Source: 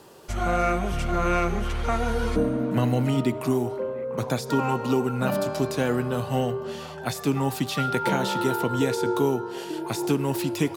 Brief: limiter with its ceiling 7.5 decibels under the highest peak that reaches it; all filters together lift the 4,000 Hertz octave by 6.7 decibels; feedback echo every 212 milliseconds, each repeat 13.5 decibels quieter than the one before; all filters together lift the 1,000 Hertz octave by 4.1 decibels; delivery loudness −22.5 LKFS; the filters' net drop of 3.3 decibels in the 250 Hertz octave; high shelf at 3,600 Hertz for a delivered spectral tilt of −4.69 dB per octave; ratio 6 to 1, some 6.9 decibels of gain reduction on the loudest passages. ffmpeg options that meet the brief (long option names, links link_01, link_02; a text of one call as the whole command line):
ffmpeg -i in.wav -af "equalizer=frequency=250:width_type=o:gain=-4.5,equalizer=frequency=1000:width_type=o:gain=5,highshelf=frequency=3600:gain=6.5,equalizer=frequency=4000:width_type=o:gain=4,acompressor=threshold=-25dB:ratio=6,alimiter=limit=-20dB:level=0:latency=1,aecho=1:1:212|424:0.211|0.0444,volume=8dB" out.wav